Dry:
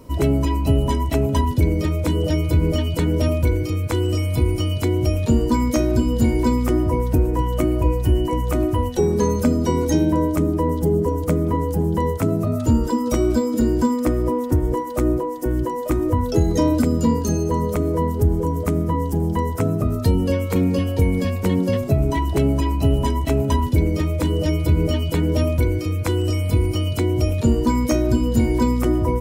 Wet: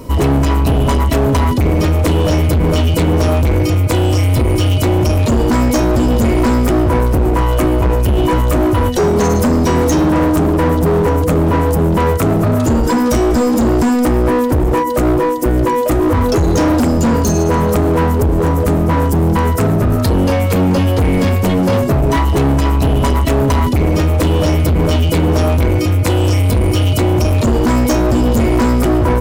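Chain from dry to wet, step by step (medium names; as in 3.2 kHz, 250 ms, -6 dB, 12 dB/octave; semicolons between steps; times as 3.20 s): in parallel at -2.5 dB: peak limiter -14.5 dBFS, peak gain reduction 7.5 dB; on the sum: hard clipper -17.5 dBFS, distortion -8 dB; trim +7.5 dB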